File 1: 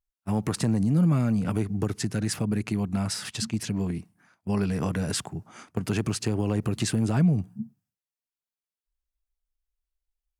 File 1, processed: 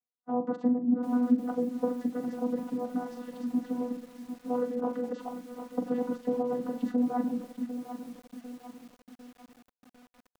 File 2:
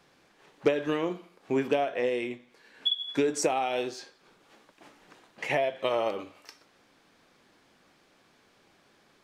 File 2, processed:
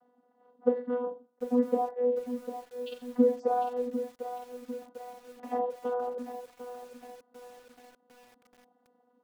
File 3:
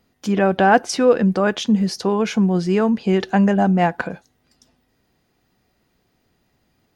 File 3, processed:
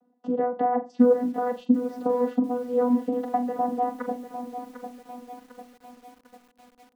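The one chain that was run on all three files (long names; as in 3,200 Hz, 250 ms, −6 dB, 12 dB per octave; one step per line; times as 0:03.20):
mains-hum notches 60/120/180/240/300 Hz
reverb reduction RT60 0.86 s
parametric band 810 Hz +9 dB 0.55 octaves
downward compressor 5 to 1, threshold −18 dBFS
moving average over 19 samples
channel vocoder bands 16, saw 246 Hz
flutter between parallel walls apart 7.3 metres, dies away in 0.26 s
feedback echo at a low word length 749 ms, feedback 55%, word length 8 bits, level −10 dB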